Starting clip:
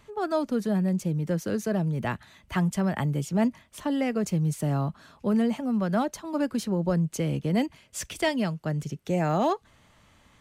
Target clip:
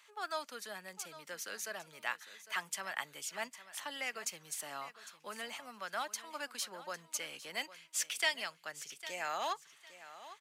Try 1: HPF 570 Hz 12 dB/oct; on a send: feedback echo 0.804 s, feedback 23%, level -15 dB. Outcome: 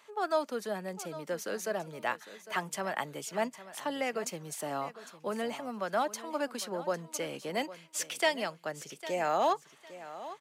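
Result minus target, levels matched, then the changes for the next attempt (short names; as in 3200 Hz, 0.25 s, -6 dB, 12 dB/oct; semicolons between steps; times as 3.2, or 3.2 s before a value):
500 Hz band +8.0 dB
change: HPF 1500 Hz 12 dB/oct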